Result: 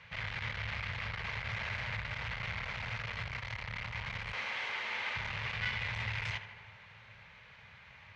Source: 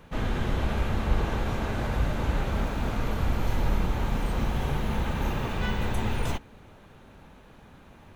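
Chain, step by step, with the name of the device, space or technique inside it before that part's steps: 4.33–5.16 steep high-pass 240 Hz 72 dB/oct; scooped metal amplifier (tube stage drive 32 dB, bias 0.45; speaker cabinet 110–4600 Hz, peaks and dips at 110 Hz +9 dB, 310 Hz -9 dB, 750 Hz -5 dB, 1300 Hz -3 dB, 2100 Hz +9 dB, 3700 Hz -4 dB; passive tone stack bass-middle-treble 10-0-10); tape echo 76 ms, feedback 80%, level -11 dB, low-pass 3500 Hz; gain +8 dB

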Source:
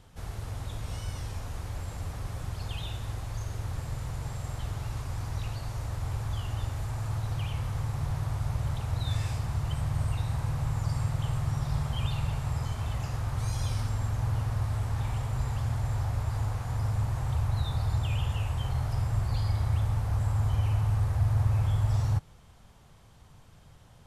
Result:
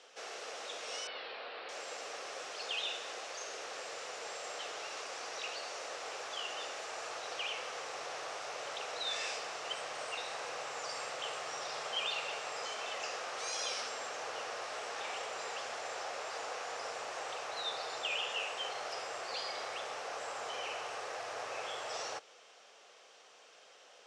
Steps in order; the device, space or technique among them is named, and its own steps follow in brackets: phone speaker on a table (speaker cabinet 460–7400 Hz, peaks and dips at 470 Hz +4 dB, 940 Hz -8 dB, 2700 Hz +5 dB, 5600 Hz +5 dB); 1.07–1.69 elliptic low-pass 4300 Hz, stop band 40 dB; gain +4 dB

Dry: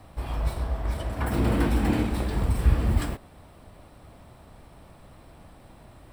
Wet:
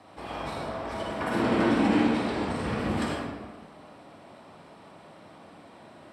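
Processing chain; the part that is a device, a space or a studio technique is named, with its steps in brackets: supermarket ceiling speaker (BPF 230–6900 Hz; reverb RT60 1.3 s, pre-delay 44 ms, DRR -2 dB); 1.42–2.79 LPF 9400 Hz 12 dB/oct

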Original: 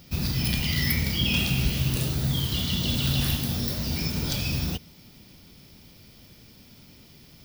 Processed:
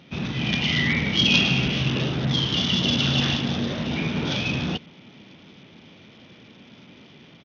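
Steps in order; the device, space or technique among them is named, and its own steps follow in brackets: Bluetooth headset (HPF 180 Hz 12 dB/oct; AGC gain up to 3 dB; downsampling 8000 Hz; gain +4.5 dB; SBC 64 kbps 48000 Hz)

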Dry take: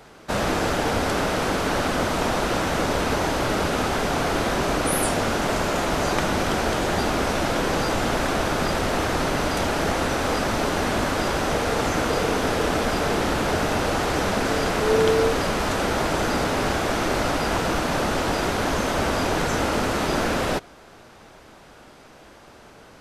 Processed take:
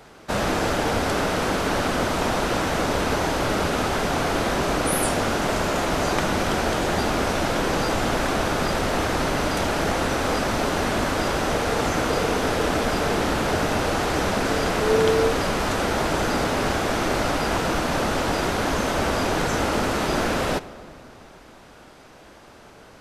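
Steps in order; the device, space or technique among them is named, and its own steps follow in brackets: saturated reverb return (on a send at -13.5 dB: reverb RT60 2.2 s, pre-delay 29 ms + soft clip -20.5 dBFS, distortion -12 dB)

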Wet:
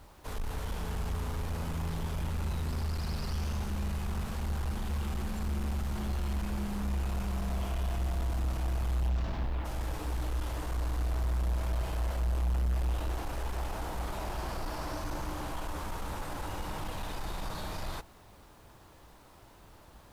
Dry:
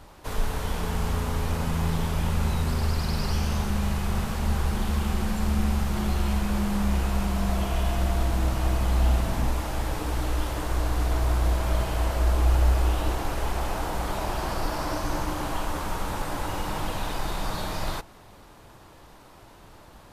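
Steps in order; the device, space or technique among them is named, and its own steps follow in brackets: 9.08–9.64 LPF 7400 Hz -> 3400 Hz 24 dB/oct; open-reel tape (soft clip -23.5 dBFS, distortion -11 dB; bell 61 Hz +4.5 dB 0.98 oct; white noise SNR 38 dB); gain -6.5 dB

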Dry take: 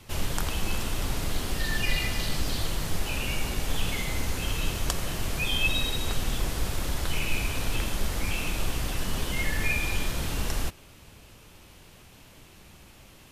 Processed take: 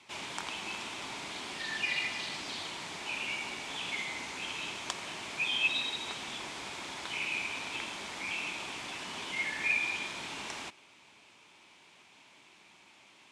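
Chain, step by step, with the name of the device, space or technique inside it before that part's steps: full-range speaker at full volume (Doppler distortion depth 0.15 ms; speaker cabinet 300–8500 Hz, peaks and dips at 500 Hz -7 dB, 940 Hz +6 dB, 2300 Hz +8 dB, 3500 Hz +4 dB); gain -6.5 dB

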